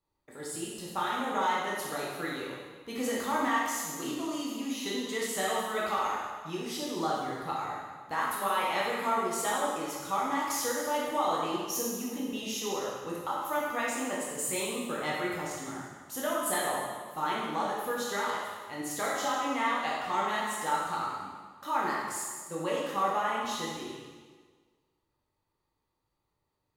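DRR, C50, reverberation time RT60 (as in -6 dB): -5.5 dB, -1.0 dB, 1.5 s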